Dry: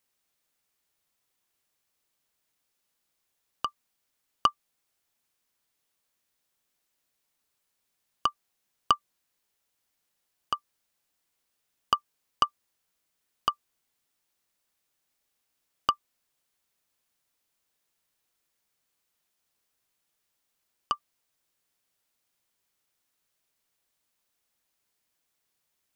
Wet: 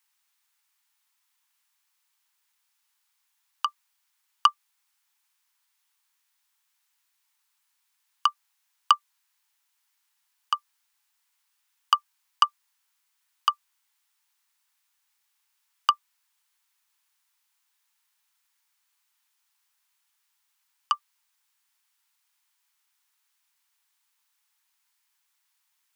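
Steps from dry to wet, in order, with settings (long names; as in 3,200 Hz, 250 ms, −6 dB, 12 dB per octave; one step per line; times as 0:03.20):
elliptic high-pass filter 860 Hz
level +5 dB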